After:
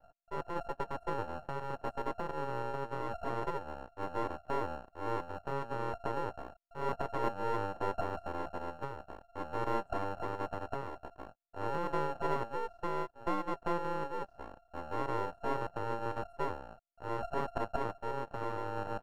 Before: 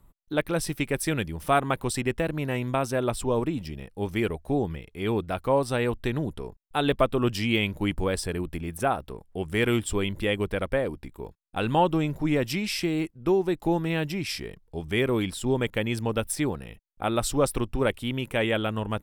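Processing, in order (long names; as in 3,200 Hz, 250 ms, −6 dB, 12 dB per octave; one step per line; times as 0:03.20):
inverse Chebyshev low-pass filter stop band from 870 Hz, stop band 50 dB
ring modulation 690 Hz
half-wave rectification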